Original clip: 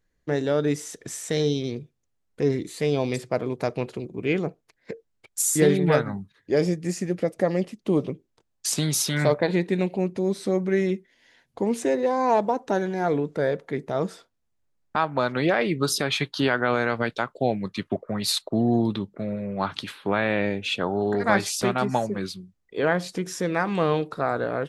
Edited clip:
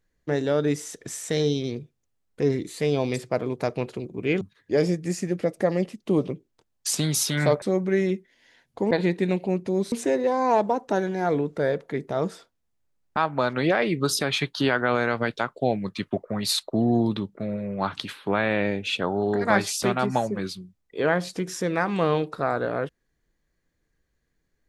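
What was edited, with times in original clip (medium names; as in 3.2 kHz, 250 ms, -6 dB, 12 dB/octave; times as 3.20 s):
4.41–6.20 s: delete
9.41–10.42 s: move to 11.71 s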